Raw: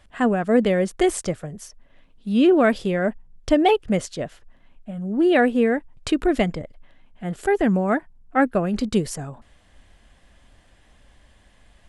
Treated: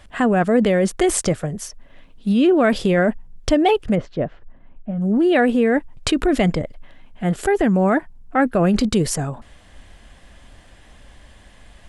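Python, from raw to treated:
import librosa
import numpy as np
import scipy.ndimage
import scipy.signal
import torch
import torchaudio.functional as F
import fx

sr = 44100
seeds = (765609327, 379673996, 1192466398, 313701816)

p1 = fx.over_compress(x, sr, threshold_db=-23.0, ratio=-0.5)
p2 = x + (p1 * 10.0 ** (-1.0 / 20.0))
y = fx.spacing_loss(p2, sr, db_at_10k=44, at=(3.94, 5.0), fade=0.02)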